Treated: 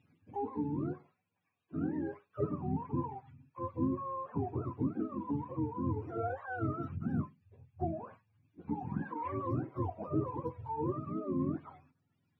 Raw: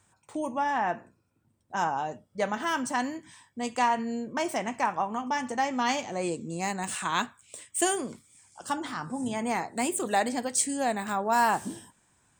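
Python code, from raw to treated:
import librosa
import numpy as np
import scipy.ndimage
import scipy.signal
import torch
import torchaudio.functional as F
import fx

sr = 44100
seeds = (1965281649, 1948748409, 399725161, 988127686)

y = fx.octave_mirror(x, sr, pivot_hz=500.0)
y = fx.rider(y, sr, range_db=4, speed_s=0.5)
y = y * 10.0 ** (-6.0 / 20.0)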